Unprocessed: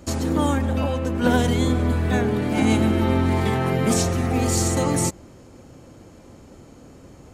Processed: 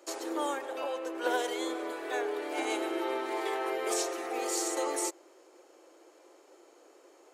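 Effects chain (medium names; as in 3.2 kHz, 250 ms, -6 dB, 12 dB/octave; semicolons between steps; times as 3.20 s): elliptic high-pass 340 Hz, stop band 40 dB; trim -7 dB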